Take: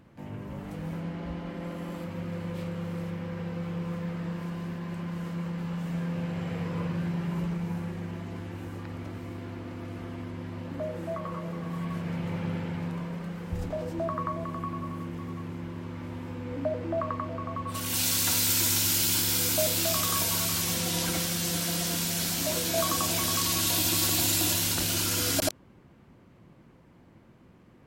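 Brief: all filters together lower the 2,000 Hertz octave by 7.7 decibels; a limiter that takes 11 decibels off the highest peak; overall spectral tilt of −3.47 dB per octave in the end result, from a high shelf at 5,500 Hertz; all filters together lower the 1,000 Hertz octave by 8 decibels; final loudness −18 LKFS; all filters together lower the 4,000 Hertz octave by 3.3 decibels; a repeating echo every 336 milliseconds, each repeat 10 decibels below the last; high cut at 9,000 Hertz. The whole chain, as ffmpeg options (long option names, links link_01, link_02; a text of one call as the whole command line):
ffmpeg -i in.wav -af "lowpass=9000,equalizer=frequency=1000:width_type=o:gain=-8,equalizer=frequency=2000:width_type=o:gain=-7.5,equalizer=frequency=4000:width_type=o:gain=-5.5,highshelf=frequency=5500:gain=7.5,alimiter=limit=-21.5dB:level=0:latency=1,aecho=1:1:336|672|1008|1344:0.316|0.101|0.0324|0.0104,volume=14.5dB" out.wav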